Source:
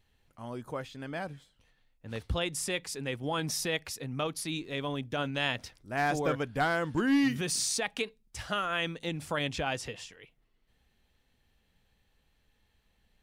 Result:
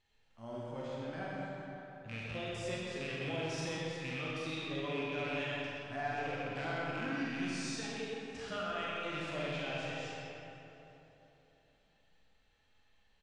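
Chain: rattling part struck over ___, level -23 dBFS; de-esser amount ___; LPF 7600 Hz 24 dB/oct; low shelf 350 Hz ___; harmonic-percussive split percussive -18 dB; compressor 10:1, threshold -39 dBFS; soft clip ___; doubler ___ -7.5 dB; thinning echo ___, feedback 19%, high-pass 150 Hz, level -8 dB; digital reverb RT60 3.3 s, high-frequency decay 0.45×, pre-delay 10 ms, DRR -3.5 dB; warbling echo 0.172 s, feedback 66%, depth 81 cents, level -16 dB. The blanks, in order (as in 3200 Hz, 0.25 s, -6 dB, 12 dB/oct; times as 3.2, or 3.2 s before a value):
-37 dBFS, 75%, -8 dB, -30 dBFS, 44 ms, 0.128 s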